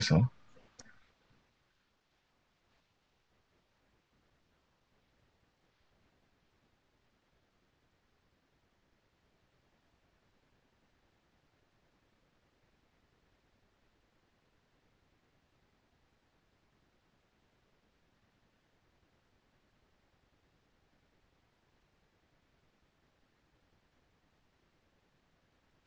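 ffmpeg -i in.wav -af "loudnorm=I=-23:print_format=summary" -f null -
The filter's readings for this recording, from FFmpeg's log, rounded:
Input Integrated:    -30.4 LUFS
Input True Peak:     -14.6 dBTP
Input LRA:             0.0 LU
Input Threshold:     -45.6 LUFS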